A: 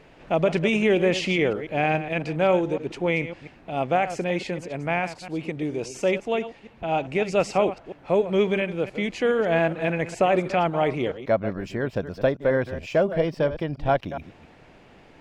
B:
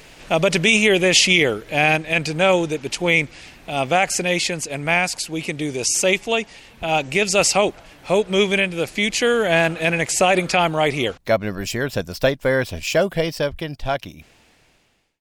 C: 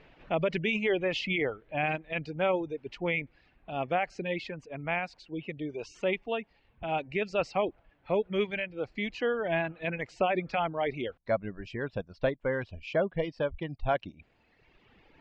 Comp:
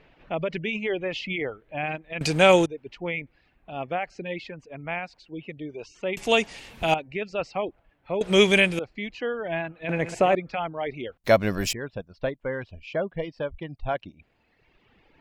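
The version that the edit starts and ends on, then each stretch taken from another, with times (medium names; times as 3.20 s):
C
2.21–2.66 s: from B
6.17–6.94 s: from B
8.21–8.79 s: from B
9.89–10.35 s: from A
11.24–11.73 s: from B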